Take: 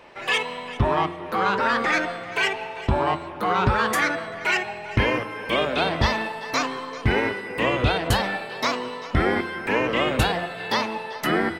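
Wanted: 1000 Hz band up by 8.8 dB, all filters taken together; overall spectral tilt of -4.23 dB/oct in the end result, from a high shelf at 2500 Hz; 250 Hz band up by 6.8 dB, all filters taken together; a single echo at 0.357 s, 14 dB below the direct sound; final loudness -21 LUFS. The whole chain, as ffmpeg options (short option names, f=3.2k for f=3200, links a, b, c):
-af "equalizer=f=250:t=o:g=8,equalizer=f=1k:t=o:g=9,highshelf=f=2.5k:g=8,aecho=1:1:357:0.2,volume=-3.5dB"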